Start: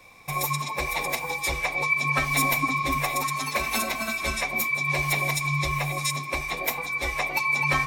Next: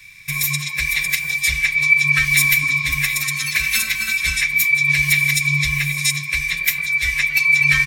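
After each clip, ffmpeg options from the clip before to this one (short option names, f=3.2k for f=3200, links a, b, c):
-af "firequalizer=gain_entry='entry(160,0);entry(240,-17);entry(740,-29);entry(1700,6);entry(3700,4)':delay=0.05:min_phase=1,volume=5dB"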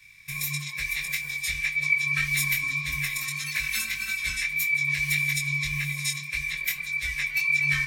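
-af "flanger=delay=19.5:depth=3.6:speed=1.7,volume=-6.5dB"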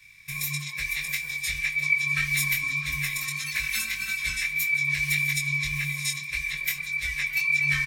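-af "aecho=1:1:655:0.141"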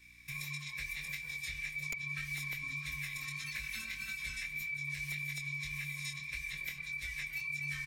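-filter_complex "[0:a]aeval=exprs='(mod(4.73*val(0)+1,2)-1)/4.73':c=same,aeval=exprs='val(0)+0.00112*(sin(2*PI*60*n/s)+sin(2*PI*2*60*n/s)/2+sin(2*PI*3*60*n/s)/3+sin(2*PI*4*60*n/s)/4+sin(2*PI*5*60*n/s)/5)':c=same,acrossover=split=600|2000|5500[a][b][c][d];[a]acompressor=threshold=-40dB:ratio=4[e];[b]acompressor=threshold=-42dB:ratio=4[f];[c]acompressor=threshold=-36dB:ratio=4[g];[d]acompressor=threshold=-47dB:ratio=4[h];[e][f][g][h]amix=inputs=4:normalize=0,volume=-6.5dB"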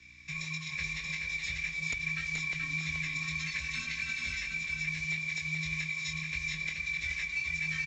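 -af "afreqshift=13,aresample=16000,acrusher=bits=6:mode=log:mix=0:aa=0.000001,aresample=44100,aecho=1:1:428:0.631,volume=4dB"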